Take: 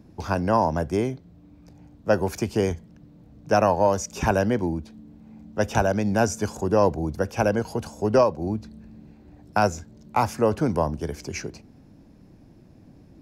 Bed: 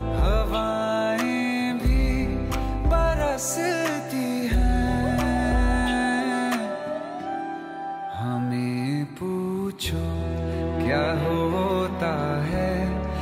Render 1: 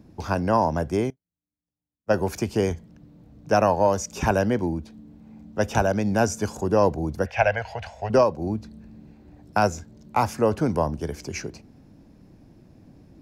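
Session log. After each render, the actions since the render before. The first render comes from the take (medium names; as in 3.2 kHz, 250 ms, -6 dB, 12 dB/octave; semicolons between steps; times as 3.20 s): 1.10–2.14 s: upward expansion 2.5:1, over -44 dBFS; 7.26–8.10 s: FFT filter 100 Hz 0 dB, 170 Hz -13 dB, 320 Hz -24 dB, 670 Hz +7 dB, 1.2 kHz -5 dB, 1.9 kHz +14 dB, 11 kHz -20 dB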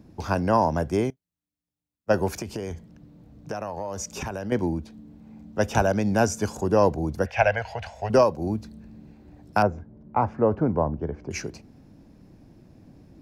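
2.32–4.52 s: compression 12:1, threshold -27 dBFS; 7.95–8.75 s: treble shelf 9.1 kHz +7.5 dB; 9.62–11.31 s: low-pass 1.2 kHz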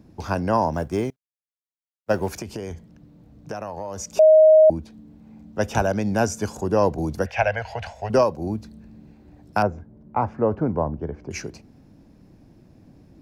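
0.73–2.31 s: companding laws mixed up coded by A; 4.19–4.70 s: bleep 627 Hz -8.5 dBFS; 6.98–7.93 s: three bands compressed up and down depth 40%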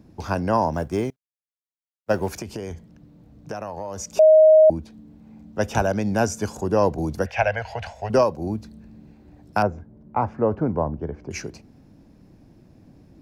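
no audible change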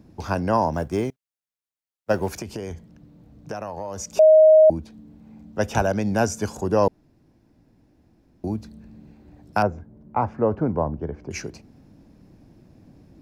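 6.88–8.44 s: room tone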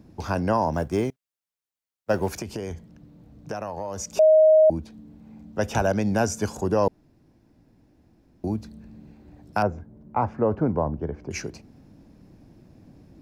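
peak limiter -11.5 dBFS, peak gain reduction 3 dB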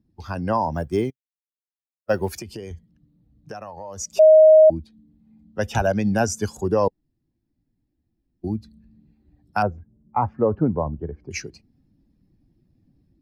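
expander on every frequency bin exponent 1.5; level rider gain up to 4.5 dB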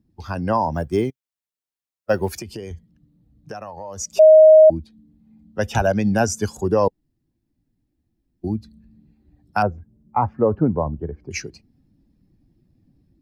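trim +2 dB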